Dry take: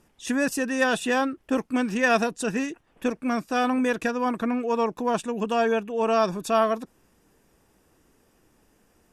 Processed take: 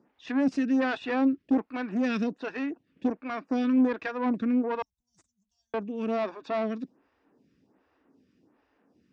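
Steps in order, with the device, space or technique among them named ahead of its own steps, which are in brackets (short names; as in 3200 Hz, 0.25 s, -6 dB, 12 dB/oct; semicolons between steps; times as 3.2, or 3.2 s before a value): 4.82–5.74 inverse Chebyshev band-stop 240–2500 Hz, stop band 60 dB; vibe pedal into a guitar amplifier (photocell phaser 1.3 Hz; tube stage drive 24 dB, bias 0.55; speaker cabinet 92–4500 Hz, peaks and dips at 190 Hz +3 dB, 270 Hz +9 dB, 3200 Hz -4 dB)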